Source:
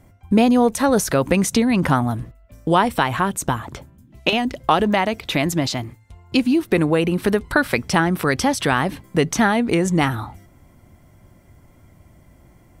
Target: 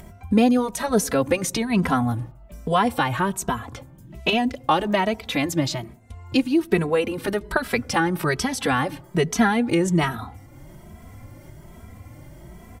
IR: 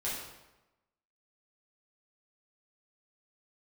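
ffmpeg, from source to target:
-filter_complex "[0:a]acompressor=mode=upward:threshold=-28dB:ratio=2.5,asplit=2[link_01][link_02];[1:a]atrim=start_sample=2205,lowpass=1000,adelay=84[link_03];[link_02][link_03]afir=irnorm=-1:irlink=0,volume=-27dB[link_04];[link_01][link_04]amix=inputs=2:normalize=0,asplit=2[link_05][link_06];[link_06]adelay=2.7,afreqshift=1.2[link_07];[link_05][link_07]amix=inputs=2:normalize=1"

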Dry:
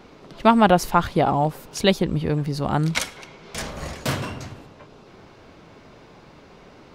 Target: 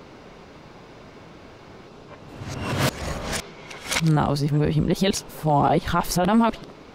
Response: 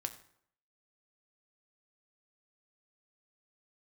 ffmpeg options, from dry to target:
-af "areverse,alimiter=limit=-13.5dB:level=0:latency=1:release=10,volume=3dB"

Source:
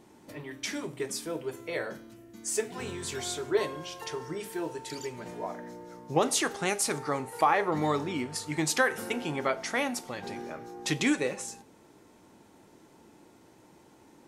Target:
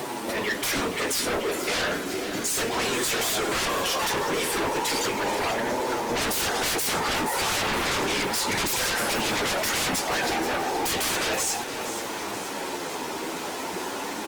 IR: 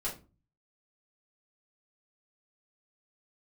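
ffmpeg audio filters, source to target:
-filter_complex "[0:a]highpass=160,asplit=2[link_01][link_02];[link_02]acompressor=mode=upward:threshold=-31dB:ratio=2.5,volume=-0.5dB[link_03];[link_01][link_03]amix=inputs=2:normalize=0,afftfilt=real='hypot(re,im)*cos(2*PI*random(0))':imag='hypot(re,im)*sin(2*PI*random(1))':win_size=512:overlap=0.75,acrossover=split=230|2800[link_04][link_05][link_06];[link_05]asoftclip=type=tanh:threshold=-27dB[link_07];[link_04][link_07][link_06]amix=inputs=3:normalize=0,acrusher=bits=8:mix=0:aa=0.000001,flanger=delay=7.9:depth=4.9:regen=-4:speed=0.34:shape=triangular,asplit=2[link_08][link_09];[link_09]highpass=frequency=720:poles=1,volume=18dB,asoftclip=type=tanh:threshold=-16.5dB[link_10];[link_08][link_10]amix=inputs=2:normalize=0,lowpass=frequency=5500:poles=1,volume=-6dB,aeval=exprs='0.112*sin(PI/2*3.98*val(0)/0.112)':channel_layout=same,aecho=1:1:477|954|1431|1908|2385|2862:0.282|0.147|0.0762|0.0396|0.0206|0.0107,volume=-4dB" -ar 48000 -c:a libopus -b:a 32k

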